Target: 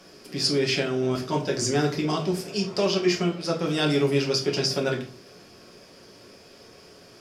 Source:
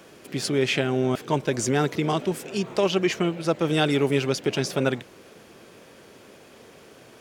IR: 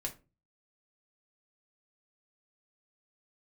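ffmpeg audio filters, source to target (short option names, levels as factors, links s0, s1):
-filter_complex "[0:a]equalizer=f=5000:t=o:w=0.36:g=15[s0];[1:a]atrim=start_sample=2205,asetrate=28224,aresample=44100[s1];[s0][s1]afir=irnorm=-1:irlink=0,volume=0.562"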